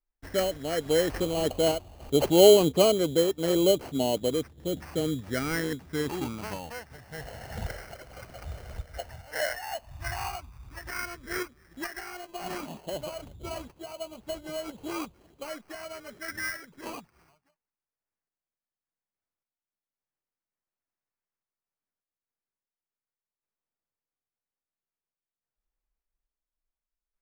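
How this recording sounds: phasing stages 8, 0.09 Hz, lowest notch 290–1900 Hz; aliases and images of a low sample rate 3600 Hz, jitter 0%; random-step tremolo

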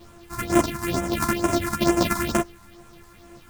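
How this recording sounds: a buzz of ramps at a fixed pitch in blocks of 128 samples; phasing stages 4, 2.2 Hz, lowest notch 470–4300 Hz; a quantiser's noise floor 10-bit, dither none; a shimmering, thickened sound

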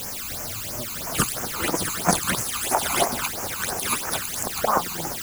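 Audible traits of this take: tremolo triangle 4.4 Hz, depth 60%; a quantiser's noise floor 6-bit, dither triangular; phasing stages 12, 3 Hz, lowest notch 550–3800 Hz

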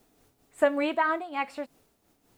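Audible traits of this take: a quantiser's noise floor 12-bit, dither triangular; noise-modulated level

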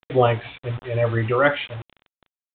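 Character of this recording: a quantiser's noise floor 6-bit, dither none; µ-law

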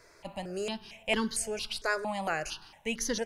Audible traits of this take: notches that jump at a steady rate 4.4 Hz 800–2500 Hz

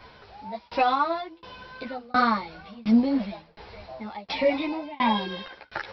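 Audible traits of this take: tremolo saw down 1.4 Hz, depth 100%; a shimmering, thickened sound

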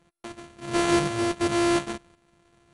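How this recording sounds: a buzz of ramps at a fixed pitch in blocks of 128 samples; tremolo saw up 0.93 Hz, depth 60%; aliases and images of a low sample rate 5100 Hz, jitter 0%; MP2

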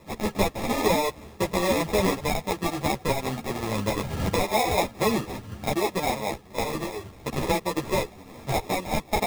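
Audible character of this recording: aliases and images of a low sample rate 1500 Hz, jitter 0%; a shimmering, thickened sound

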